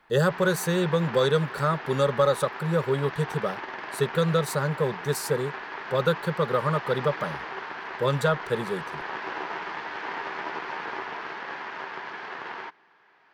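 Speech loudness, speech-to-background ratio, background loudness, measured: -26.5 LUFS, 9.0 dB, -35.5 LUFS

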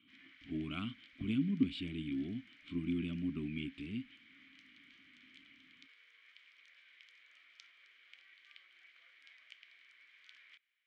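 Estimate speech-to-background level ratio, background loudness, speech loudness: 21.0 dB, -60.0 LUFS, -39.0 LUFS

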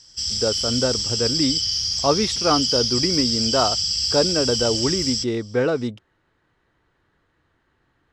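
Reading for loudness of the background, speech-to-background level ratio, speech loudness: -21.0 LUFS, -2.5 dB, -23.5 LUFS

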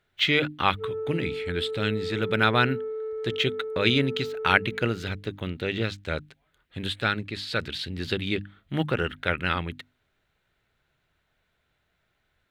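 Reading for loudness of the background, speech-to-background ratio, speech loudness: -33.5 LUFS, 6.5 dB, -27.0 LUFS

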